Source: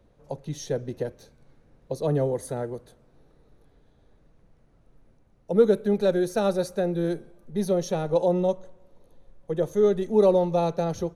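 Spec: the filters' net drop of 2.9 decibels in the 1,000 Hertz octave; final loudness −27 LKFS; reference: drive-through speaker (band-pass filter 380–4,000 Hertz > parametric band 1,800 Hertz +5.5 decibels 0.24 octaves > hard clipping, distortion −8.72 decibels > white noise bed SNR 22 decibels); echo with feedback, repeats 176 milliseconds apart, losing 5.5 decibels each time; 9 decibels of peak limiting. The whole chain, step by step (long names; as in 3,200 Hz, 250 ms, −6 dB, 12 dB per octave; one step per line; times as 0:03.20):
parametric band 1,000 Hz −4 dB
brickwall limiter −17.5 dBFS
band-pass filter 380–4,000 Hz
parametric band 1,800 Hz +5.5 dB 0.24 octaves
repeating echo 176 ms, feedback 53%, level −5.5 dB
hard clipping −28.5 dBFS
white noise bed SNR 22 dB
level +7 dB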